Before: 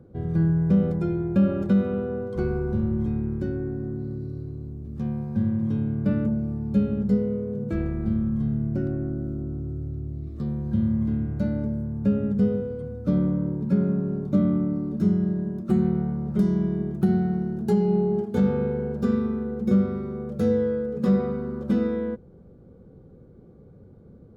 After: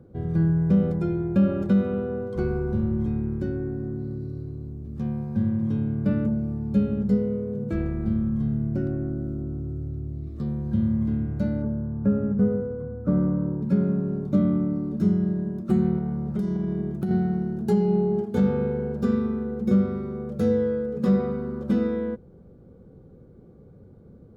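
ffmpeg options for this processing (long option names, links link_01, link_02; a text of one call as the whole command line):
ffmpeg -i in.wav -filter_complex "[0:a]asettb=1/sr,asplit=3[link_01][link_02][link_03];[link_01]atrim=end=11.624[link_04];[link_02]atrim=start=11.62:end=13.62,asetpts=PTS-STARTPTS,afade=type=in:duration=0.004:curve=qsin,afade=type=out:start_time=1.996:duration=0.004:curve=qsin,highshelf=frequency=2100:width_type=q:width=1.5:gain=-13[link_05];[link_03]atrim=start=13.616[link_06];[link_04][link_05]acrossfade=duration=0.004:curve1=hsin:curve2=qsin[link_07];[link_07][link_06]acrossfade=duration=0.004:curve1=qsin:curve2=hsin,asettb=1/sr,asplit=3[link_08][link_09][link_10];[link_08]atrim=end=15.984[link_11];[link_09]atrim=start=15.98:end=17.11,asetpts=PTS-STARTPTS,afade=type=in:duration=0.004:curve=qsin,afade=type=out:start_time=1.126:duration=0.004:curve=qsin,acompressor=threshold=-22dB:ratio=6:attack=3.2:release=140:knee=1:detection=peak[link_12];[link_10]atrim=start=17.106[link_13];[link_11][link_12]acrossfade=duration=0.004:curve1=hsin:curve2=qsin[link_14];[link_14][link_13]acrossfade=duration=0.004:curve1=qsin:curve2=hsin" out.wav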